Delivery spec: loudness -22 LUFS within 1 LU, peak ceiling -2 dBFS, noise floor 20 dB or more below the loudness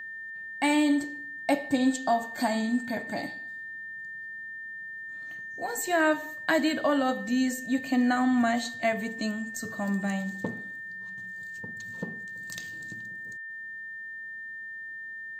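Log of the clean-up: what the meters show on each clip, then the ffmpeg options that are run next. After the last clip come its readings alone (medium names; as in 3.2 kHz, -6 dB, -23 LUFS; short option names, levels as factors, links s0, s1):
steady tone 1.8 kHz; tone level -37 dBFS; loudness -30.0 LUFS; peak level -11.5 dBFS; loudness target -22.0 LUFS
-> -af "bandreject=f=1800:w=30"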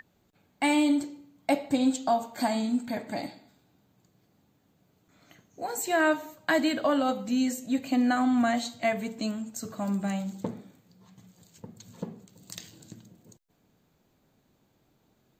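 steady tone not found; loudness -28.0 LUFS; peak level -12.5 dBFS; loudness target -22.0 LUFS
-> -af "volume=2"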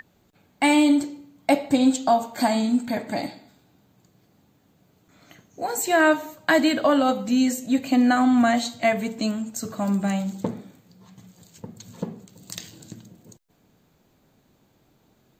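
loudness -22.0 LUFS; peak level -6.5 dBFS; noise floor -63 dBFS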